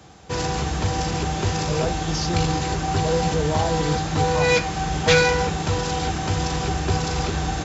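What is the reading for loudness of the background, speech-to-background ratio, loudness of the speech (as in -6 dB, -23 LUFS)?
-23.0 LUFS, -4.5 dB, -27.5 LUFS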